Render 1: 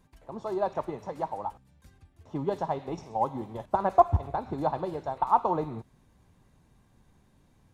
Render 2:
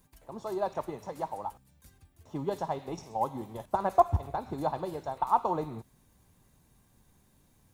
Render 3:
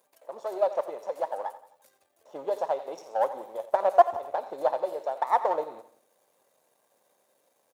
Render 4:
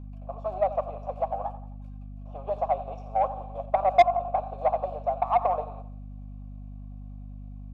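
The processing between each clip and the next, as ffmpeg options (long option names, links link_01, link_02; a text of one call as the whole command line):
ffmpeg -i in.wav -af "aemphasis=mode=production:type=50fm,volume=-2.5dB" out.wav
ffmpeg -i in.wav -af "aeval=exprs='if(lt(val(0),0),0.447*val(0),val(0))':channel_layout=same,highpass=frequency=550:width_type=q:width=4.2,aecho=1:1:87|174|261|348:0.178|0.0818|0.0376|0.0173" out.wav
ffmpeg -i in.wav -filter_complex "[0:a]asplit=3[link_01][link_02][link_03];[link_01]bandpass=frequency=730:width_type=q:width=8,volume=0dB[link_04];[link_02]bandpass=frequency=1090:width_type=q:width=8,volume=-6dB[link_05];[link_03]bandpass=frequency=2440:width_type=q:width=8,volume=-9dB[link_06];[link_04][link_05][link_06]amix=inputs=3:normalize=0,asplit=2[link_07][link_08];[link_08]highpass=frequency=720:poles=1,volume=17dB,asoftclip=type=tanh:threshold=-8dB[link_09];[link_07][link_09]amix=inputs=2:normalize=0,lowpass=frequency=5300:poles=1,volume=-6dB,aeval=exprs='val(0)+0.0112*(sin(2*PI*50*n/s)+sin(2*PI*2*50*n/s)/2+sin(2*PI*3*50*n/s)/3+sin(2*PI*4*50*n/s)/4+sin(2*PI*5*50*n/s)/5)':channel_layout=same" out.wav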